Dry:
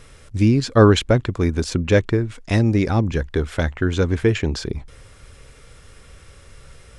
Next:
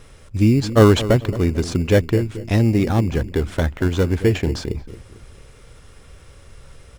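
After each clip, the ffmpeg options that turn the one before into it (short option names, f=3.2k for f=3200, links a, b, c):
-filter_complex "[0:a]asplit=2[a][b];[b]adelay=223,lowpass=f=880:p=1,volume=-13.5dB,asplit=2[c][d];[d]adelay=223,lowpass=f=880:p=1,volume=0.44,asplit=2[e][f];[f]adelay=223,lowpass=f=880:p=1,volume=0.44,asplit=2[g][h];[h]adelay=223,lowpass=f=880:p=1,volume=0.44[i];[a][c][e][g][i]amix=inputs=5:normalize=0,asplit=2[j][k];[k]acrusher=samples=18:mix=1:aa=0.000001,volume=-8dB[l];[j][l]amix=inputs=2:normalize=0,volume=-2dB"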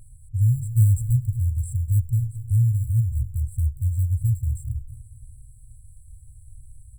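-af "afftfilt=real='re*(1-between(b*sr/4096,130,7400))':imag='im*(1-between(b*sr/4096,130,7400))':win_size=4096:overlap=0.75"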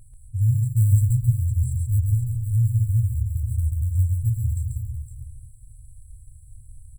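-af "aecho=1:1:137|511:0.708|0.398,volume=-1.5dB"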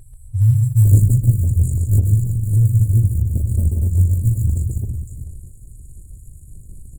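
-af "volume=6dB" -ar 48000 -c:a libopus -b:a 16k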